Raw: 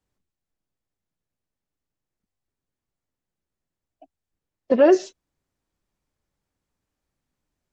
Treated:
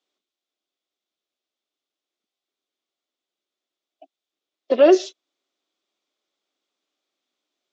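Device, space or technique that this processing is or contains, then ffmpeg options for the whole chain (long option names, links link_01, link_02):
phone speaker on a table: -af "highpass=frequency=340:width=0.5412,highpass=frequency=340:width=1.3066,equalizer=frequency=480:width_type=q:width=4:gain=-6,equalizer=frequency=910:width_type=q:width=4:gain=-9,equalizer=frequency=1700:width_type=q:width=4:gain=-8,equalizer=frequency=3500:width_type=q:width=4:gain=9,lowpass=frequency=6700:width=0.5412,lowpass=frequency=6700:width=1.3066,volume=5dB"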